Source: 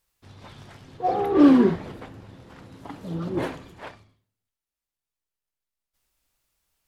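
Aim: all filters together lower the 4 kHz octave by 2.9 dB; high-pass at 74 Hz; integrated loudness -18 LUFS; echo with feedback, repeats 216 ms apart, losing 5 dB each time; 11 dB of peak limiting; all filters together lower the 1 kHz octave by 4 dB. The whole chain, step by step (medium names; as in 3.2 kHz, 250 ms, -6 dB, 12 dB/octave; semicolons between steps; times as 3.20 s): high-pass 74 Hz; peaking EQ 1 kHz -6 dB; peaking EQ 4 kHz -3.5 dB; peak limiter -16.5 dBFS; feedback delay 216 ms, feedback 56%, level -5 dB; trim +9.5 dB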